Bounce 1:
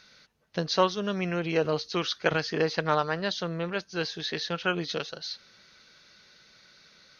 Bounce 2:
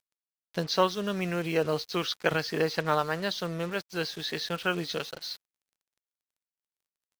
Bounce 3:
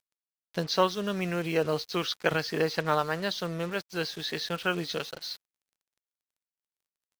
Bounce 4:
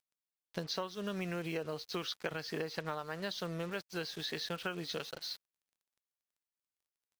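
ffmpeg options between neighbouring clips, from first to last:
ffmpeg -i in.wav -af "acrusher=bits=6:mix=0:aa=0.5,volume=-1dB" out.wav
ffmpeg -i in.wav -af anull out.wav
ffmpeg -i in.wav -af "acompressor=threshold=-30dB:ratio=12,volume=-4dB" out.wav

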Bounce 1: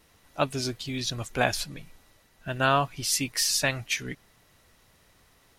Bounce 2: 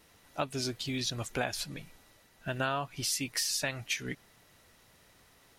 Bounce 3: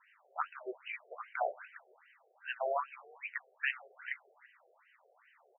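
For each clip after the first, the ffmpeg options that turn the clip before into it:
ffmpeg -i in.wav -af "lowshelf=frequency=70:gain=-7.5,bandreject=frequency=1100:width=26,acompressor=threshold=-30dB:ratio=4" out.wav
ffmpeg -i in.wav -filter_complex "[0:a]flanger=delay=7.9:depth=7.5:regen=-62:speed=1.6:shape=triangular,asplit=5[link_01][link_02][link_03][link_04][link_05];[link_02]adelay=166,afreqshift=-120,volume=-18dB[link_06];[link_03]adelay=332,afreqshift=-240,volume=-24dB[link_07];[link_04]adelay=498,afreqshift=-360,volume=-30dB[link_08];[link_05]adelay=664,afreqshift=-480,volume=-36.1dB[link_09];[link_01][link_06][link_07][link_08][link_09]amix=inputs=5:normalize=0,afftfilt=real='re*between(b*sr/1024,520*pow(2200/520,0.5+0.5*sin(2*PI*2.5*pts/sr))/1.41,520*pow(2200/520,0.5+0.5*sin(2*PI*2.5*pts/sr))*1.41)':imag='im*between(b*sr/1024,520*pow(2200/520,0.5+0.5*sin(2*PI*2.5*pts/sr))/1.41,520*pow(2200/520,0.5+0.5*sin(2*PI*2.5*pts/sr))*1.41)':win_size=1024:overlap=0.75,volume=7.5dB" out.wav

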